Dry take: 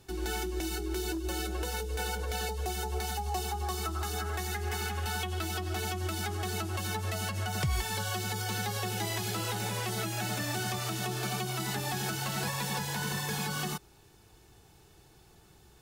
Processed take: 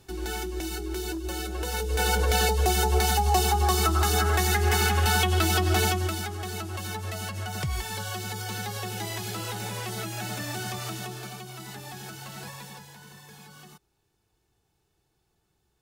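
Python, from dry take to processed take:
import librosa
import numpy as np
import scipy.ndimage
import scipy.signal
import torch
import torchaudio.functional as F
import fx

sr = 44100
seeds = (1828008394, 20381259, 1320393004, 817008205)

y = fx.gain(x, sr, db=fx.line((1.53, 1.5), (2.17, 11.0), (5.83, 11.0), (6.31, 0.0), (10.9, 0.0), (11.37, -7.0), (12.53, -7.0), (13.0, -15.0)))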